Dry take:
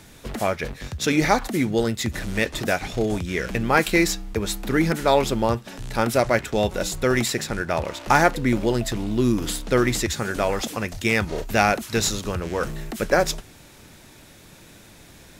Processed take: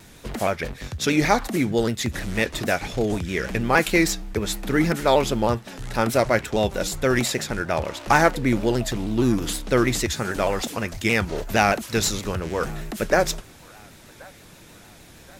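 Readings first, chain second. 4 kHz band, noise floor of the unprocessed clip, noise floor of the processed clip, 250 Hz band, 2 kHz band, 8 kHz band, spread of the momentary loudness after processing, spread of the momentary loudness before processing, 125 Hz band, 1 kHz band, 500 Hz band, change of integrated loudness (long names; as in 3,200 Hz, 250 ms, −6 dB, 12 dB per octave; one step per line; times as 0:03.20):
0.0 dB, −48 dBFS, −48 dBFS, 0.0 dB, 0.0 dB, 0.0 dB, 8 LU, 8 LU, 0.0 dB, 0.0 dB, 0.0 dB, 0.0 dB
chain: delay with a band-pass on its return 1,077 ms, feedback 47%, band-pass 1,200 Hz, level −23.5 dB
pitch modulation by a square or saw wave saw down 6.4 Hz, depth 100 cents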